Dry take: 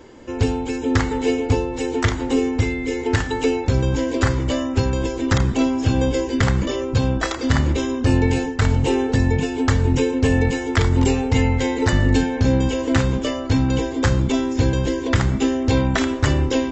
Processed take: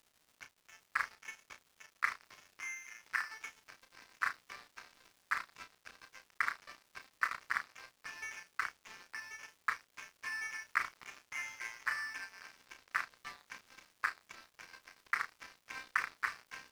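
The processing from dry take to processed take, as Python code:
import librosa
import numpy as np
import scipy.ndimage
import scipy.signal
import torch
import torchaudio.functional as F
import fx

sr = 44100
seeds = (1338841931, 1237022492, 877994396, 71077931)

y = scipy.signal.sosfilt(scipy.signal.ellip(3, 1.0, 40, [1100.0, 2400.0], 'bandpass', fs=sr, output='sos'), x)
y = np.sign(y) * np.maximum(np.abs(y) - 10.0 ** (-35.0 / 20.0), 0.0)
y = fx.dmg_crackle(y, sr, seeds[0], per_s=330.0, level_db=-50.0)
y = fx.doubler(y, sr, ms=33.0, db=-9)
y = F.gain(torch.from_numpy(y), -5.5).numpy()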